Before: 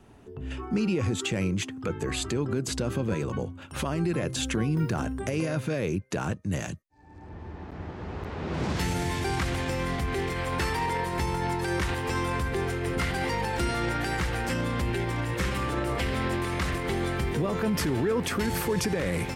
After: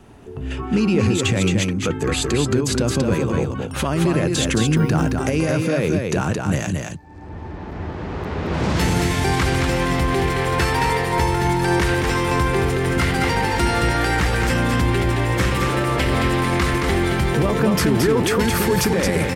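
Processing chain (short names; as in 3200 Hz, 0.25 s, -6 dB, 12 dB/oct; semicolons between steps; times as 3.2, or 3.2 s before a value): echo 0.221 s -4 dB; gain +8 dB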